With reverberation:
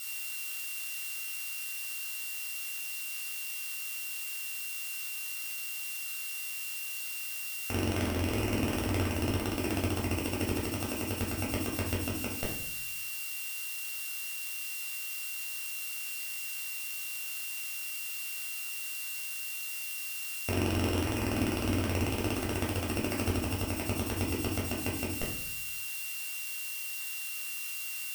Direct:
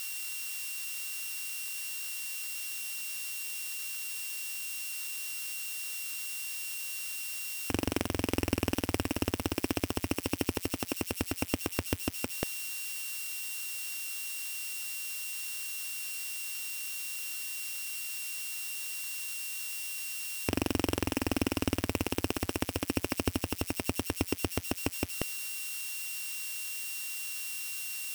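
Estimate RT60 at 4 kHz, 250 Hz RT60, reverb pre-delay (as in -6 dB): 0.50 s, 1.0 s, 8 ms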